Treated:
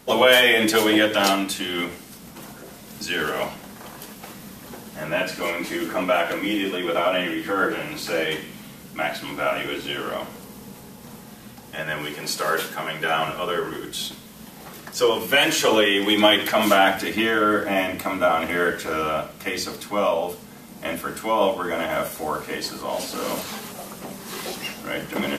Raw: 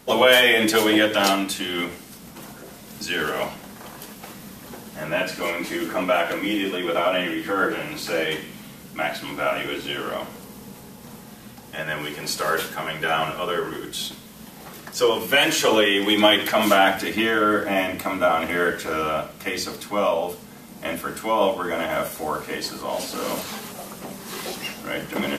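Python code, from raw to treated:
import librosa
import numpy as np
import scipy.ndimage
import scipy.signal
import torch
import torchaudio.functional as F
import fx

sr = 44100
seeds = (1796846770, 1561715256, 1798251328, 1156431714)

y = fx.highpass(x, sr, hz=120.0, slope=12, at=(12.14, 13.28))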